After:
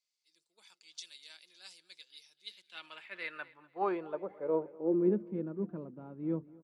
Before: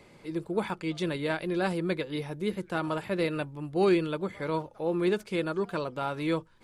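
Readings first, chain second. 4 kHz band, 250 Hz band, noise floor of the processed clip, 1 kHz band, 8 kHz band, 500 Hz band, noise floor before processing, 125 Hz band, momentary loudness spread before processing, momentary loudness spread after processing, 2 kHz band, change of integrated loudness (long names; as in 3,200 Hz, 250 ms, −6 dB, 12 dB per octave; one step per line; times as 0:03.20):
−9.0 dB, −6.5 dB, −84 dBFS, −8.0 dB, can't be measured, −7.5 dB, −57 dBFS, −10.5 dB, 6 LU, 22 LU, −11.0 dB, −5.0 dB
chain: band-pass filter sweep 5,700 Hz → 230 Hz, 0:02.18–0:05.18
repeating echo 247 ms, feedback 50%, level −18 dB
multiband upward and downward expander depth 70%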